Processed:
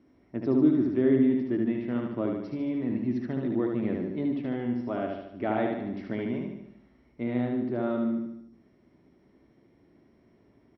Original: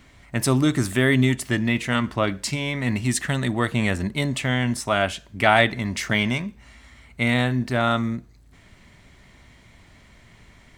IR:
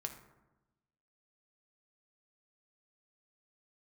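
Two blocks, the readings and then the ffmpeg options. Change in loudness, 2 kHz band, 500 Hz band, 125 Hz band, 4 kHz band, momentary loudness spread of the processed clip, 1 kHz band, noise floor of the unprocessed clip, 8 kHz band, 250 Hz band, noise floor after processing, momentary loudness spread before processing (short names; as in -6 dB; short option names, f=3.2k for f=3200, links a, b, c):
-6.0 dB, -20.5 dB, -4.0 dB, -13.0 dB, under -25 dB, 11 LU, -13.0 dB, -52 dBFS, under -40 dB, -2.0 dB, -63 dBFS, 7 LU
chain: -filter_complex "[0:a]bandpass=f=330:t=q:w=2.4:csg=0,asplit=2[a][b];[b]aecho=0:1:74|148|222|296|370|444|518:0.668|0.361|0.195|0.105|0.0568|0.0307|0.0166[c];[a][c]amix=inputs=2:normalize=0" -ar 22050 -c:a mp2 -b:a 48k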